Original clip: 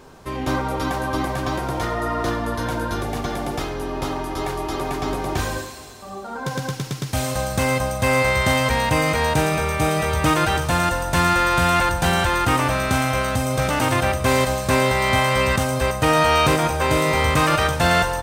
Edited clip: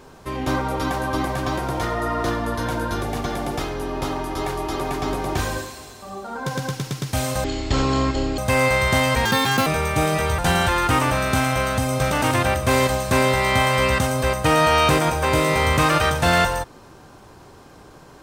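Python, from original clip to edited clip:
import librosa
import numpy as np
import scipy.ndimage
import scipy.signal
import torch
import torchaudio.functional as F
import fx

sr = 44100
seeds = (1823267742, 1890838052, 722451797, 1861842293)

y = fx.edit(x, sr, fx.speed_span(start_s=7.44, length_s=0.48, speed=0.51),
    fx.speed_span(start_s=8.79, length_s=0.71, speed=1.72),
    fx.cut(start_s=10.22, length_s=1.74), tone=tone)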